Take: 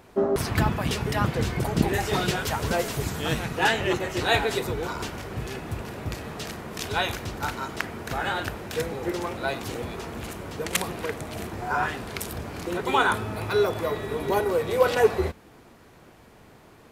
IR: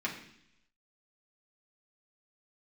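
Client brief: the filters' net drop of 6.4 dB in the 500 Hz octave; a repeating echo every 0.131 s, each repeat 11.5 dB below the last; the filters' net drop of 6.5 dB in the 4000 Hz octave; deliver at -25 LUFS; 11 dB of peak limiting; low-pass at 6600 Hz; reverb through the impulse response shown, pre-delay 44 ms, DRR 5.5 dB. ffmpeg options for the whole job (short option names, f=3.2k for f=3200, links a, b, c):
-filter_complex "[0:a]lowpass=6.6k,equalizer=f=500:t=o:g=-8,equalizer=f=4k:t=o:g=-8,alimiter=limit=-19dB:level=0:latency=1,aecho=1:1:131|262|393:0.266|0.0718|0.0194,asplit=2[a][b];[1:a]atrim=start_sample=2205,adelay=44[c];[b][c]afir=irnorm=-1:irlink=0,volume=-11dB[d];[a][d]amix=inputs=2:normalize=0,volume=6dB"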